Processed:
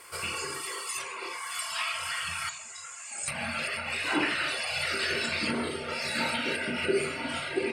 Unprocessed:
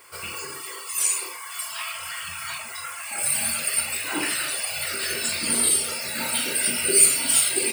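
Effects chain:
0:02.49–0:03.28: transistor ladder low-pass 7,300 Hz, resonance 85%
treble cut that deepens with the level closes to 1,800 Hz, closed at −20 dBFS
level +1 dB

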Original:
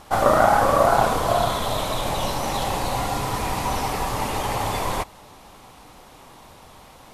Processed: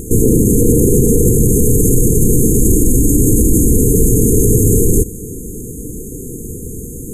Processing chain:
linear-phase brick-wall band-stop 490–6,300 Hz
0:02.60–0:03.72: comb filter 3.4 ms, depth 44%
boost into a limiter +25.5 dB
level −1 dB

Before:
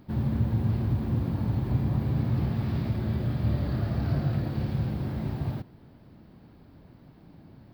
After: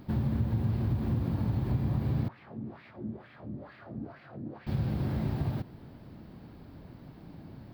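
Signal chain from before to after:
downward compressor 2.5 to 1, threshold −32 dBFS, peak gain reduction 8.5 dB
0:02.28–0:04.67: LFO wah 2.2 Hz 230–2,300 Hz, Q 2.5
level +3.5 dB

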